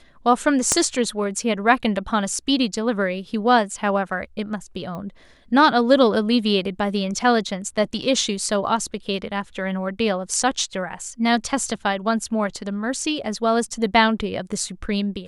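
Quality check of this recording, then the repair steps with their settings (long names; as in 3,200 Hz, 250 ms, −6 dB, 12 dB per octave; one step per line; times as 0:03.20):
0:00.72: click −4 dBFS
0:04.95: click −22 dBFS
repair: click removal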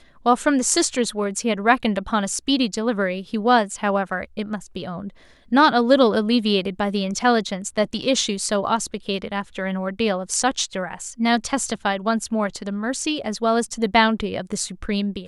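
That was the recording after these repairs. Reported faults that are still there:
0:00.72: click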